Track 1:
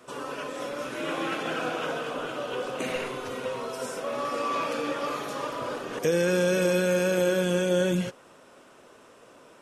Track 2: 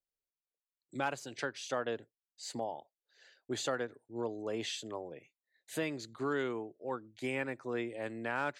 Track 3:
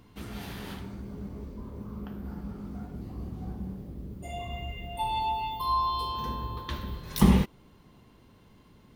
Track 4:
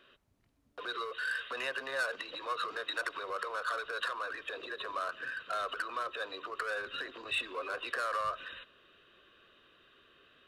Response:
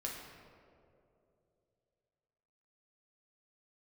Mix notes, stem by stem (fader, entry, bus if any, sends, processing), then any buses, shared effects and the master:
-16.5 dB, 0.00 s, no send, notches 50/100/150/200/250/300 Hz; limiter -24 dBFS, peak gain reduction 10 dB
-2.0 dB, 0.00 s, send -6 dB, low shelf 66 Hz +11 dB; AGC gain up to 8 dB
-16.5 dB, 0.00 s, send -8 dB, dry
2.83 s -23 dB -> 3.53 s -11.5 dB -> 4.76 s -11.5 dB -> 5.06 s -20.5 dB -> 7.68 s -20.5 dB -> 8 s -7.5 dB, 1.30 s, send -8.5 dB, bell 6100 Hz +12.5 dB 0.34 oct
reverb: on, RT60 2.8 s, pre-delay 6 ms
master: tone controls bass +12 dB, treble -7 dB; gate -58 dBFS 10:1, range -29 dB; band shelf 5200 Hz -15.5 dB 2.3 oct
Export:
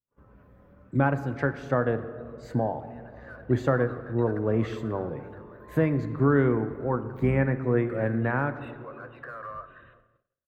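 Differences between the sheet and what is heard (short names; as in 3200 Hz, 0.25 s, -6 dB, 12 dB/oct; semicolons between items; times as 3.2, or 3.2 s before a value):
stem 1 -16.5 dB -> -26.5 dB; stem 3 -16.5 dB -> -28.0 dB; stem 4: missing bell 6100 Hz +12.5 dB 0.34 oct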